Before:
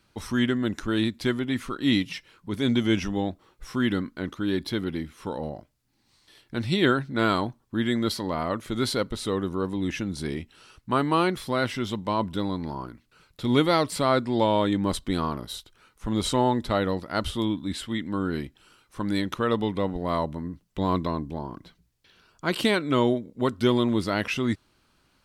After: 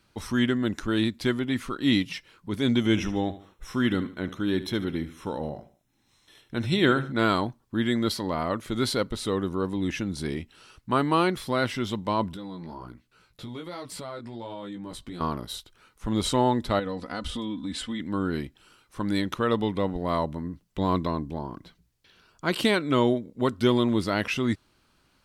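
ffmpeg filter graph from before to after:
-filter_complex "[0:a]asettb=1/sr,asplit=3[s0][s1][s2];[s0]atrim=end=2.784[s3];[s1]atrim=start=2.78:end=7.12,asetpts=PTS-STARTPTS,afade=t=in:d=0.004:c=qsin,afade=t=out:st=4.336:d=0.004:c=qsin,asuperstop=centerf=4600:order=12:qfactor=6.4,aecho=1:1:73|146|219:0.188|0.0678|0.0244,atrim=end_sample=191394[s4];[s2]atrim=start=7.116[s5];[s3][s4]acrossfade=d=0.004:c1=hsin:c2=qsin[s6];[s6][s5]acrossfade=d=0.004:c1=qsin:c2=hsin,asettb=1/sr,asplit=3[s7][s8][s9];[s7]atrim=end=12.344[s10];[s8]atrim=start=12.34:end=15.21,asetpts=PTS-STARTPTS,afade=t=in:d=0.004:c=qsin,afade=t=out:st=2.866:d=0.004:c=qsin,flanger=delay=15.5:depth=2.4:speed=1.3,acompressor=threshold=0.0178:ratio=5:attack=3.2:release=140:knee=1:detection=peak[s11];[s9]atrim=start=15.206[s12];[s10][s11]acrossfade=d=0.004:c1=hsin:c2=qsin[s13];[s13][s12]acrossfade=d=0.004:c1=qsin:c2=hsin,asettb=1/sr,asplit=3[s14][s15][s16];[s14]atrim=end=16.794[s17];[s15]atrim=start=16.79:end=18,asetpts=PTS-STARTPTS,afade=t=in:d=0.004:c=qsin,afade=t=out:st=1.206:d=0.004:c=qsin,lowpass=f=10000:w=0.5412,lowpass=f=10000:w=1.3066,aecho=1:1:4:0.63,atrim=end_sample=53361,acompressor=threshold=0.0398:ratio=6:attack=3.2:release=140:knee=1:detection=peak[s18];[s16]atrim=start=17.996[s19];[s17][s18]acrossfade=d=0.004:c1=hsin:c2=qsin[s20];[s20][s19]acrossfade=d=0.004:c1=qsin:c2=hsin"

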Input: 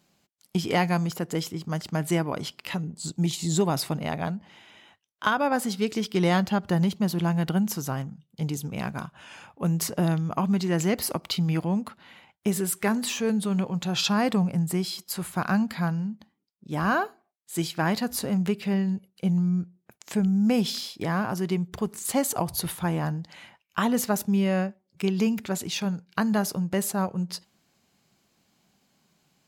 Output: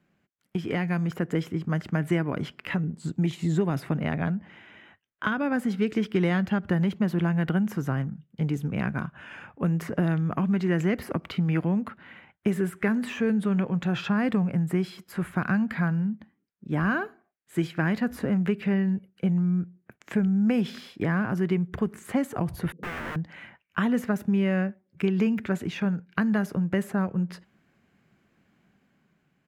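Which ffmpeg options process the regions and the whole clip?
-filter_complex "[0:a]asettb=1/sr,asplit=3[s0][s1][s2];[s0]atrim=end=22.724[s3];[s1]atrim=start=22.72:end=23.16,asetpts=PTS-STARTPTS,afade=t=in:d=0.004:c=qsin,afade=t=out:st=0.436:d=0.004:c=qsin,asubboost=boost=7.5:cutoff=200,asuperpass=centerf=270:order=20:qfactor=0.7,aeval=exprs='(mod(37.6*val(0)+1,2)-1)/37.6':c=same[s4];[s2]atrim=start=23.156[s5];[s3][s4]acrossfade=d=0.004:c1=hsin:c2=qsin[s6];[s6][s5]acrossfade=d=0.004:c1=qsin:c2=hsin,acrossover=split=340|2500[s7][s8][s9];[s7]acompressor=threshold=0.0355:ratio=4[s10];[s8]acompressor=threshold=0.0282:ratio=4[s11];[s9]acompressor=threshold=0.02:ratio=4[s12];[s10][s11][s12]amix=inputs=3:normalize=0,firequalizer=gain_entry='entry(280,0);entry(860,-7);entry(1600,2);entry(4300,-18)':delay=0.05:min_phase=1,dynaudnorm=f=190:g=9:m=1.78"

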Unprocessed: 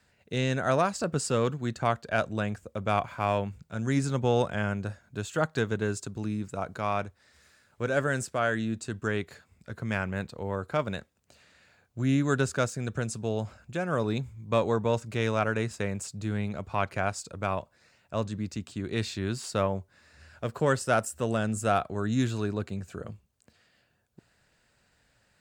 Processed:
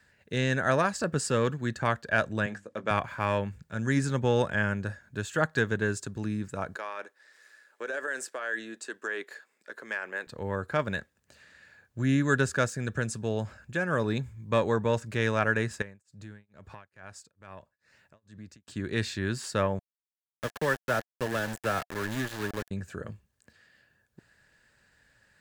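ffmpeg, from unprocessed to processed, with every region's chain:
-filter_complex "[0:a]asettb=1/sr,asplit=3[s0][s1][s2];[s0]atrim=end=2.464[s3];[s1]atrim=start=2.46:end=2.91,asetpts=PTS-STARTPTS,afade=t=in:d=0.004:c=qsin,afade=t=out:st=0.446:d=0.004:c=qsin,highpass=220,lowpass=7900,bandreject=f=50:t=h:w=6,bandreject=f=100:t=h:w=6,bandreject=f=150:t=h:w=6,bandreject=f=200:t=h:w=6,bandreject=f=250:t=h:w=6,bandreject=f=300:t=h:w=6,asplit=2[s4][s5];[s5]adelay=18,volume=0.282[s6];[s4][s6]amix=inputs=2:normalize=0,atrim=end_sample=19845[s7];[s2]atrim=start=2.906[s8];[s3][s7]acrossfade=d=0.004:c1=hsin:c2=qsin[s9];[s9][s8]acrossfade=d=0.004:c1=qsin:c2=hsin,asettb=1/sr,asplit=3[s10][s11][s12];[s10]atrim=end=6.764[s13];[s11]atrim=start=6.76:end=10.27,asetpts=PTS-STARTPTS,afade=t=in:d=0.004:c=qsin,afade=t=out:st=3.506:d=0.004:c=qsin,highpass=f=340:w=0.5412,highpass=f=340:w=1.3066,tremolo=f=110:d=0.261,acompressor=threshold=0.0282:ratio=6:attack=3.2:release=140:knee=1:detection=peak[s14];[s12]atrim=start=10.266[s15];[s13][s14]acrossfade=d=0.004:c1=hsin:c2=qsin[s16];[s16][s15]acrossfade=d=0.004:c1=qsin:c2=hsin,asettb=1/sr,asplit=3[s17][s18][s19];[s17]atrim=end=15.824[s20];[s18]atrim=start=15.82:end=18.68,asetpts=PTS-STARTPTS,afade=t=in:d=0.004:c=qsin,afade=t=out:st=2.856:d=0.004:c=qsin,acompressor=threshold=0.00501:ratio=2.5:attack=3.2:release=140:knee=1:detection=peak,tremolo=f=2.3:d=0.99[s21];[s19]atrim=start=18.676[s22];[s20][s21]acrossfade=d=0.004:c1=hsin:c2=qsin[s23];[s23][s22]acrossfade=d=0.004:c1=qsin:c2=hsin,asettb=1/sr,asplit=3[s24][s25][s26];[s24]atrim=end=19.794[s27];[s25]atrim=start=19.79:end=22.71,asetpts=PTS-STARTPTS,afade=t=in:d=0.004:c=qsin,afade=t=out:st=2.916:d=0.004:c=qsin,highpass=50,acrossover=split=130|360|1300|4800[s28][s29][s30][s31][s32];[s28]acompressor=threshold=0.00891:ratio=3[s33];[s29]acompressor=threshold=0.0112:ratio=3[s34];[s30]acompressor=threshold=0.0447:ratio=3[s35];[s31]acompressor=threshold=0.0126:ratio=3[s36];[s32]acompressor=threshold=0.00178:ratio=3[s37];[s33][s34][s35][s36][s37]amix=inputs=5:normalize=0,aeval=exprs='val(0)*gte(abs(val(0)),0.0251)':c=same[s38];[s26]atrim=start=22.706[s39];[s27][s38]acrossfade=d=0.004:c1=hsin:c2=qsin[s40];[s40][s39]acrossfade=d=0.004:c1=qsin:c2=hsin,equalizer=f=1700:t=o:w=0.22:g=11.5,bandreject=f=710:w=12"

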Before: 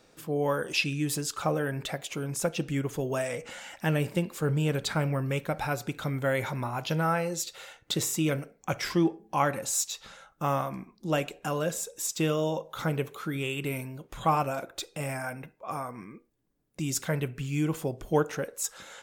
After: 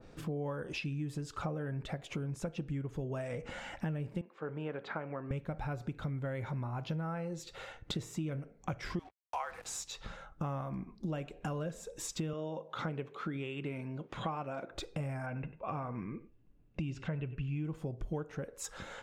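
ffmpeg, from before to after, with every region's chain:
-filter_complex "[0:a]asettb=1/sr,asplit=3[s0][s1][s2];[s0]atrim=end=4.214[s3];[s1]atrim=start=4.21:end=5.31,asetpts=PTS-STARTPTS,afade=t=in:d=0.004:c=qsin,afade=t=out:st=1.096:d=0.004:c=qsin,highpass=280,lowpass=2000,lowshelf=f=410:g=-9.5[s4];[s2]atrim=start=5.306[s5];[s3][s4]acrossfade=d=0.004:c1=hsin:c2=qsin[s6];[s6][s5]acrossfade=d=0.004:c1=qsin:c2=hsin,asettb=1/sr,asplit=3[s7][s8][s9];[s7]atrim=end=8.994[s10];[s8]atrim=start=8.99:end=9.83,asetpts=PTS-STARTPTS,afade=t=in:d=0.004:c=qsin,afade=t=out:st=0.836:d=0.004:c=qsin,highpass=f=750:w=0.5412,highpass=f=750:w=1.3066,afreqshift=-51,acrusher=bits=6:mix=0:aa=0.5[s11];[s9]atrim=start=9.826[s12];[s10][s11]acrossfade=d=0.004:c1=hsin:c2=qsin[s13];[s13][s12]acrossfade=d=0.004:c1=qsin:c2=hsin,asettb=1/sr,asplit=3[s14][s15][s16];[s14]atrim=end=12.334[s17];[s15]atrim=start=12.33:end=14.72,asetpts=PTS-STARTPTS,afade=t=in:d=0.004:c=qsin,afade=t=out:st=2.386:d=0.004:c=qsin,highpass=190,lowpass=3200,aemphasis=mode=production:type=75fm[s18];[s16]atrim=start=14.716[s19];[s17][s18]acrossfade=d=0.004:c1=hsin:c2=qsin[s20];[s20][s19]acrossfade=d=0.004:c1=qsin:c2=hsin,asettb=1/sr,asplit=3[s21][s22][s23];[s21]atrim=end=15.264[s24];[s22]atrim=start=15.26:end=17.65,asetpts=PTS-STARTPTS,afade=t=in:d=0.004:c=qsin,afade=t=out:st=2.386:d=0.004:c=qsin,lowpass=3800,equalizer=f=2700:t=o:w=0.21:g=11,aecho=1:1:95:0.126,atrim=end_sample=105399[s25];[s23]atrim=start=17.646[s26];[s24][s25]acrossfade=d=0.004:c1=hsin:c2=qsin[s27];[s27][s26]acrossfade=d=0.004:c1=qsin:c2=hsin,aemphasis=mode=reproduction:type=bsi,acompressor=threshold=0.0141:ratio=6,adynamicequalizer=threshold=0.00158:dfrequency=2200:dqfactor=0.7:tfrequency=2200:tqfactor=0.7:attack=5:release=100:ratio=0.375:range=2:mode=cutabove:tftype=highshelf,volume=1.19"

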